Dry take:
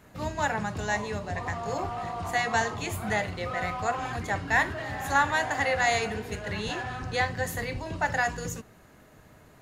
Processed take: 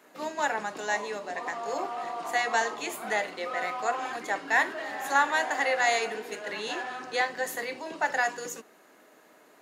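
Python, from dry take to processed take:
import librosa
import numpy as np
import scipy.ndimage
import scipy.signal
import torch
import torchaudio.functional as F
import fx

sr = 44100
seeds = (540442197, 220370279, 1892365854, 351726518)

y = scipy.signal.sosfilt(scipy.signal.butter(4, 280.0, 'highpass', fs=sr, output='sos'), x)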